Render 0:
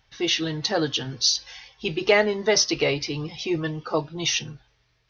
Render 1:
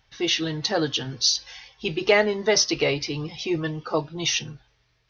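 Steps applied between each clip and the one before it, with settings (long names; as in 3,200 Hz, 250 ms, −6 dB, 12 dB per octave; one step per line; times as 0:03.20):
no processing that can be heard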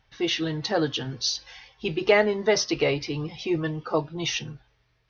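high-shelf EQ 4,100 Hz −10 dB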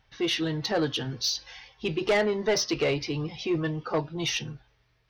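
soft clipping −18 dBFS, distortion −12 dB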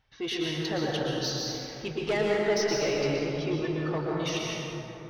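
dense smooth reverb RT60 3.4 s, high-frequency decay 0.4×, pre-delay 105 ms, DRR −3.5 dB
level −6 dB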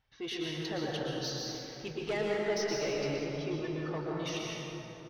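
repeating echo 312 ms, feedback 47%, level −15 dB
level −6 dB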